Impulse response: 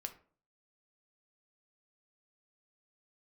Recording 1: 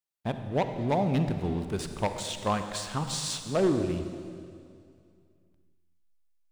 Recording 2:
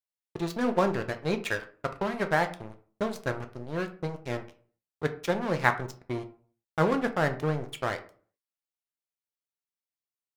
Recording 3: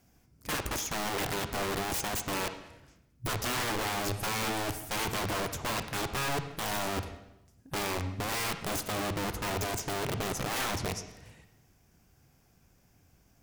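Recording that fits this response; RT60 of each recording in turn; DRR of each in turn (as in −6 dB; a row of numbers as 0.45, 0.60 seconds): 2; 2.4, 0.45, 0.90 seconds; 7.5, 6.5, 9.0 decibels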